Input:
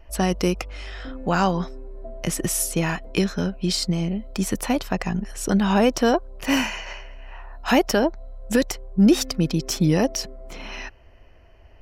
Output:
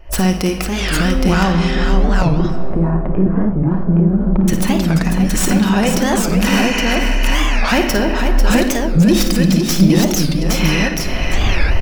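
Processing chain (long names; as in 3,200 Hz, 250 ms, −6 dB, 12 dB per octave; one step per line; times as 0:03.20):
stylus tracing distortion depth 0.084 ms
camcorder AGC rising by 52 dB per second
0:02.08–0:04.48: low-pass filter 1,100 Hz 24 dB per octave
dynamic equaliser 570 Hz, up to −5 dB, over −34 dBFS, Q 0.76
rectangular room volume 2,500 cubic metres, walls mixed, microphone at 1 metre
soft clipping −9.5 dBFS, distortion −22 dB
multi-tap delay 54/495/817 ms −9/−6.5/−3 dB
wow of a warped record 45 rpm, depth 250 cents
level +5 dB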